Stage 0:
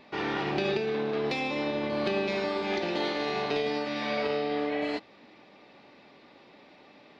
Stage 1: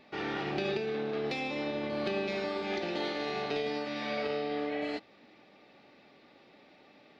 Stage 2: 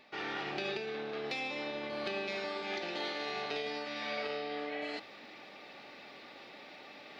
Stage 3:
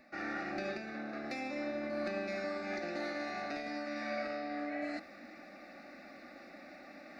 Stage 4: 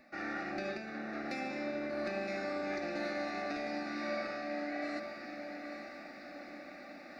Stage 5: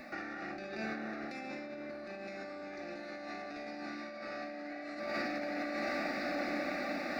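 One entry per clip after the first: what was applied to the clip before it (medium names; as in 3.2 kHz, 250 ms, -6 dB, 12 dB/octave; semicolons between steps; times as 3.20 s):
band-stop 1 kHz, Q 7.8; trim -4 dB
bass shelf 480 Hz -11 dB; reverse; upward compressor, threshold -40 dBFS; reverse
bass shelf 300 Hz +8.5 dB; static phaser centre 640 Hz, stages 8; trim +1 dB
echo that smears into a reverb 917 ms, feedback 54%, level -7 dB
compressor with a negative ratio -47 dBFS, ratio -1; trim +6 dB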